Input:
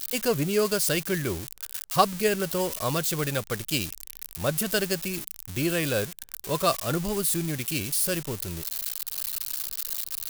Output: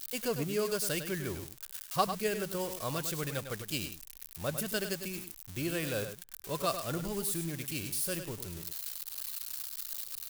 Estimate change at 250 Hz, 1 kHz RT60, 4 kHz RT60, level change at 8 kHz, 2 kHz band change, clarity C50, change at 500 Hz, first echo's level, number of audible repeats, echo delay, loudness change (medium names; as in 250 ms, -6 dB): -8.0 dB, no reverb, no reverb, -8.0 dB, -8.0 dB, no reverb, -8.0 dB, -9.0 dB, 1, 102 ms, -8.0 dB